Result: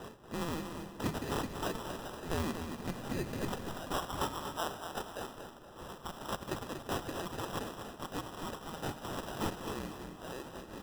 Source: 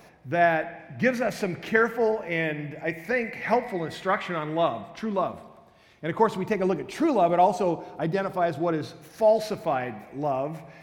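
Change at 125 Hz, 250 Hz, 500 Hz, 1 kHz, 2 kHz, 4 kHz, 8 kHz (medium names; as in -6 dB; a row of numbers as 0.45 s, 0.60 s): -7.5 dB, -11.0 dB, -17.0 dB, -13.5 dB, -15.5 dB, -2.0 dB, no reading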